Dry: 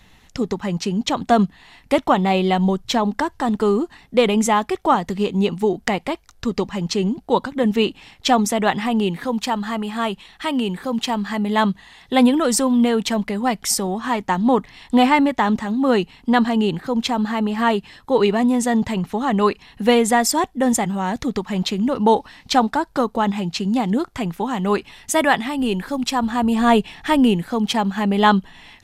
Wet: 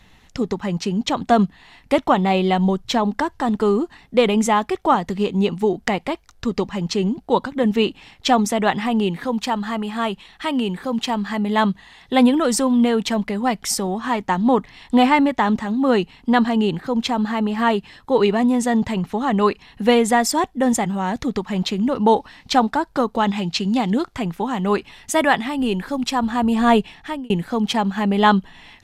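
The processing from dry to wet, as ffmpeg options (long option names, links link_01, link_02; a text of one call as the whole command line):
ffmpeg -i in.wav -filter_complex "[0:a]asettb=1/sr,asplit=3[link_01][link_02][link_03];[link_01]atrim=end=23.144[link_04];[link_02]atrim=start=23.14:end=24.15,asetpts=PTS-STARTPTS,afade=type=in:duration=0.004:curve=qsin,afade=type=out:start_time=1.006:duration=0.004:curve=qsin,equalizer=frequency=3900:width=0.64:gain=5[link_05];[link_03]atrim=start=24.146[link_06];[link_04][link_05]acrossfade=duration=0.004:curve1=hsin:curve2=qsin[link_07];[link_07][link_06]acrossfade=duration=0.004:curve1=qsin:curve2=hsin,asplit=2[link_08][link_09];[link_08]atrim=end=27.3,asetpts=PTS-STARTPTS,afade=type=out:start_time=26.76:duration=0.54[link_10];[link_09]atrim=start=27.3,asetpts=PTS-STARTPTS,afade=type=in:duration=0.004:curve=hsin[link_11];[link_10][link_11]concat=n=2:v=0:a=1,highshelf=frequency=7300:gain=-5" out.wav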